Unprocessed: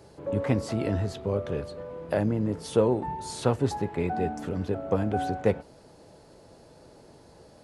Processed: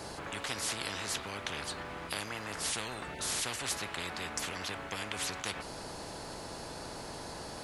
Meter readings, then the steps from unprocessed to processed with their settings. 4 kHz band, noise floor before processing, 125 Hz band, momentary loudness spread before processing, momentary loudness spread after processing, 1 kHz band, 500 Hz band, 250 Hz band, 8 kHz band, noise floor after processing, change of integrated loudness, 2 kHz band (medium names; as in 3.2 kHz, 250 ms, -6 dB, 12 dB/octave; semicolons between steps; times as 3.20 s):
+8.5 dB, -54 dBFS, -17.0 dB, 7 LU, 9 LU, -6.5 dB, -15.5 dB, -16.0 dB, +9.5 dB, -44 dBFS, -8.5 dB, +4.0 dB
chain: spectrum-flattening compressor 10:1; trim -7.5 dB